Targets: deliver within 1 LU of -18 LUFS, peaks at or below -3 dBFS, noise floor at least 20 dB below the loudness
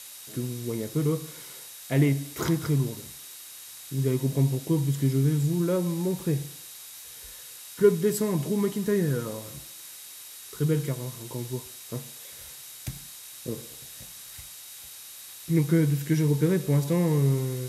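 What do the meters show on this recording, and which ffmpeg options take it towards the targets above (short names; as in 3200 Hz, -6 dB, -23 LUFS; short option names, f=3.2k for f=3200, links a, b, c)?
steady tone 3800 Hz; tone level -54 dBFS; noise floor -44 dBFS; noise floor target -47 dBFS; loudness -27.0 LUFS; peak -8.5 dBFS; loudness target -18.0 LUFS
-> -af "bandreject=f=3.8k:w=30"
-af "afftdn=nr=6:nf=-44"
-af "volume=9dB,alimiter=limit=-3dB:level=0:latency=1"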